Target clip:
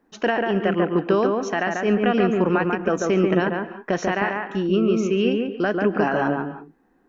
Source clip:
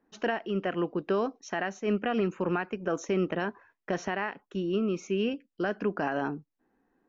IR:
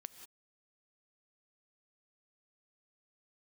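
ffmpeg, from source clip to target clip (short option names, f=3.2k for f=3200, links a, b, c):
-filter_complex "[0:a]asplit=2[a][b];[1:a]atrim=start_sample=2205,lowpass=2.4k,adelay=142[c];[b][c]afir=irnorm=-1:irlink=0,volume=3dB[d];[a][d]amix=inputs=2:normalize=0,volume=7.5dB"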